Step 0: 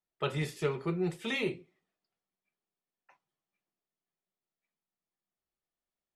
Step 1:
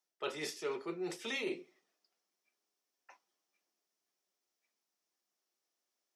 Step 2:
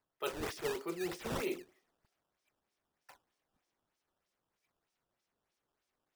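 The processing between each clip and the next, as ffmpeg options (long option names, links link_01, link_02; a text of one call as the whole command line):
ffmpeg -i in.wav -af "equalizer=frequency=5600:width=2.6:gain=10.5,areverse,acompressor=threshold=-38dB:ratio=6,areverse,highpass=frequency=260:width=0.5412,highpass=frequency=260:width=1.3066,volume=4dB" out.wav
ffmpeg -i in.wav -af "acrusher=samples=12:mix=1:aa=0.000001:lfo=1:lforange=19.2:lforate=3.2,volume=1dB" out.wav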